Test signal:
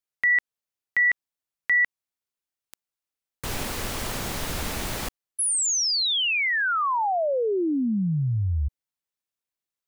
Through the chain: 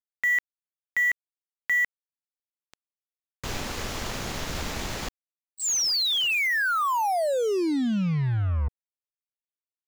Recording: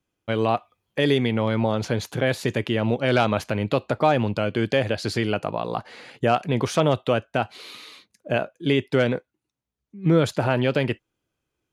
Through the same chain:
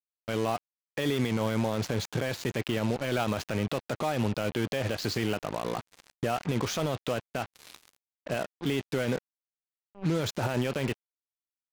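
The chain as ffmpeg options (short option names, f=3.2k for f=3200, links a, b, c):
-af "alimiter=limit=-18.5dB:level=0:latency=1:release=32,aresample=16000,aeval=exprs='sgn(val(0))*max(abs(val(0))-0.00531,0)':c=same,aresample=44100,acrusher=bits=5:mix=0:aa=0.5"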